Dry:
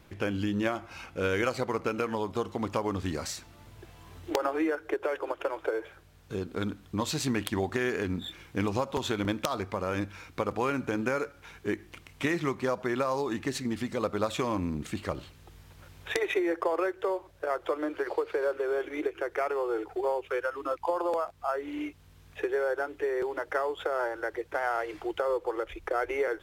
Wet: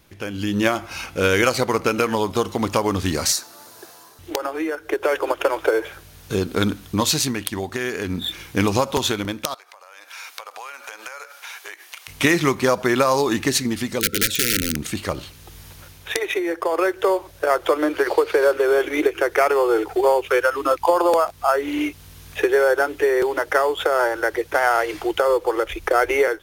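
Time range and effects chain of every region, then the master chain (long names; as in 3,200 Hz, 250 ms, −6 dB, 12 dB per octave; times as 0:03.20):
0:03.32–0:04.19: high-pass filter 400 Hz + flat-topped bell 2,600 Hz −9 dB 1 octave
0:09.54–0:12.08: high-pass filter 660 Hz 24 dB per octave + downward compressor 8 to 1, threshold −46 dBFS
0:14.00–0:14.76: wrap-around overflow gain 23.5 dB + linear-phase brick-wall band-stop 530–1,300 Hz
whole clip: high-shelf EQ 3,900 Hz +11.5 dB; notch filter 7,600 Hz, Q 10; automatic gain control gain up to 14 dB; level −1.5 dB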